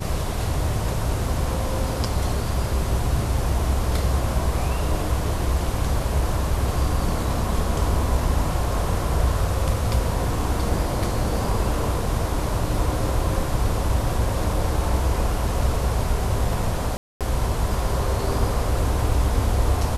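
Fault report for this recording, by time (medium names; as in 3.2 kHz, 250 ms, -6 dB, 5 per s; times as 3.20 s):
16.97–17.21 s: dropout 237 ms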